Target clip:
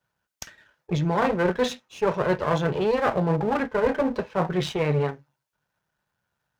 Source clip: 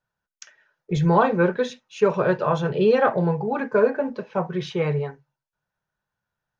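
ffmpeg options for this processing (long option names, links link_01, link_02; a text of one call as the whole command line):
ffmpeg -i in.wav -af "aeval=exprs='if(lt(val(0),0),0.251*val(0),val(0))':channel_layout=same,highpass=44,areverse,acompressor=threshold=-28dB:ratio=6,areverse,volume=8.5dB" out.wav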